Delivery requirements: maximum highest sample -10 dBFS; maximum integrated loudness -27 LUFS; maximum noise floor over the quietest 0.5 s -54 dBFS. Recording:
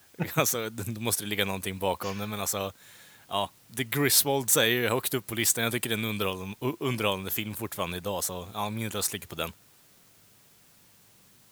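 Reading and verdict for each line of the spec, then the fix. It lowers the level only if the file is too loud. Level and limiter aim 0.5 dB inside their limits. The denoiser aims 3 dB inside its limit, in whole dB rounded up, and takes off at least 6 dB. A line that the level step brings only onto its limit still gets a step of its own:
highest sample -6.5 dBFS: fail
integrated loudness -28.0 LUFS: pass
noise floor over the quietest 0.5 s -59 dBFS: pass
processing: peak limiter -10.5 dBFS

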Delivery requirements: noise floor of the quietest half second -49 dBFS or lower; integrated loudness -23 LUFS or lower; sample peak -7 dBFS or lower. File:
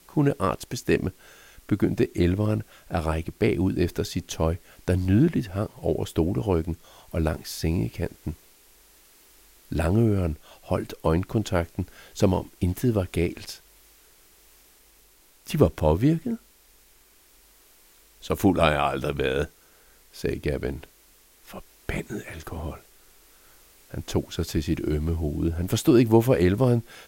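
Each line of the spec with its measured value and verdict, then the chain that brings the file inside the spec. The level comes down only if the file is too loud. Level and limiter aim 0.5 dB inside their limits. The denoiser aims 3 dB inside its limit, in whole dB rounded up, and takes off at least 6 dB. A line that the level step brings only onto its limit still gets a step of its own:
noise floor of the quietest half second -57 dBFS: pass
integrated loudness -25.5 LUFS: pass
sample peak -4.5 dBFS: fail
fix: peak limiter -7.5 dBFS

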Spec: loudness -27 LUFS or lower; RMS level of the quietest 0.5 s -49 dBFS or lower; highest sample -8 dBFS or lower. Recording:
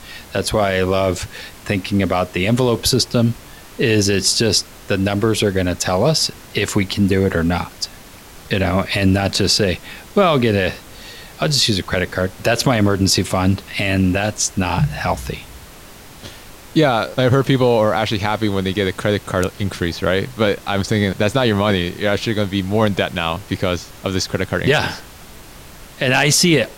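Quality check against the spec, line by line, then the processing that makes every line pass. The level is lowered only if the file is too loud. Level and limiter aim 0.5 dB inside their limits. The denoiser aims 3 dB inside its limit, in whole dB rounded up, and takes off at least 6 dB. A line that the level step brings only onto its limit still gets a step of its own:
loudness -18.0 LUFS: fail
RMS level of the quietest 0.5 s -39 dBFS: fail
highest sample -4.5 dBFS: fail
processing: noise reduction 6 dB, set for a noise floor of -39 dBFS; trim -9.5 dB

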